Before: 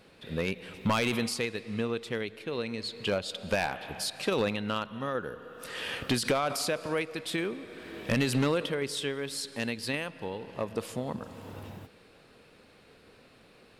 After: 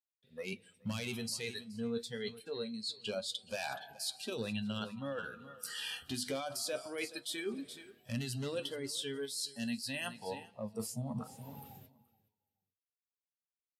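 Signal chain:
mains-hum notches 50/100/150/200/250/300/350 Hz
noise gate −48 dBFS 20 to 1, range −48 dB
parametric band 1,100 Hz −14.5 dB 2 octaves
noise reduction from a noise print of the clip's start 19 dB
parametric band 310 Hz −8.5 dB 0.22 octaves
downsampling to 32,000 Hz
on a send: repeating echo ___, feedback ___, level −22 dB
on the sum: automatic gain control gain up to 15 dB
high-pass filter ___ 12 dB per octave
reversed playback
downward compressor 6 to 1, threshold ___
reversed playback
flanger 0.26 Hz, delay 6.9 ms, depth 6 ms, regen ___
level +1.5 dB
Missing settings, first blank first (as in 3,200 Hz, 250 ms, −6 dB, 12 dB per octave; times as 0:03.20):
425 ms, 16%, 88 Hz, −35 dBFS, +46%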